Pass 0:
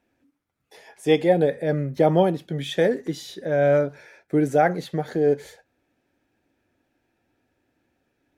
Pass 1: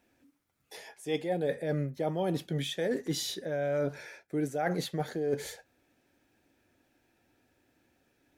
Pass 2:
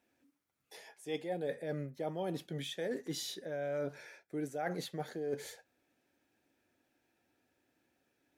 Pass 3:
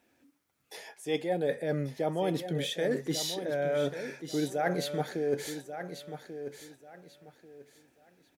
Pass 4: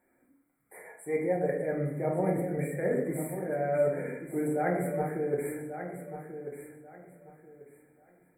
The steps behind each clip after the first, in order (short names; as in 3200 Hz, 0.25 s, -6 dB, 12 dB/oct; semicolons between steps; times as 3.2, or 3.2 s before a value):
high shelf 3600 Hz +7 dB; reverse; compressor 8:1, threshold -28 dBFS, peak gain reduction 15.5 dB; reverse
low shelf 92 Hz -11 dB; gain -6 dB
feedback echo 1.139 s, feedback 25%, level -10 dB; gain +7.5 dB
brick-wall FIR band-stop 2400–7400 Hz; shoebox room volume 170 m³, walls mixed, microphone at 0.99 m; gain -3 dB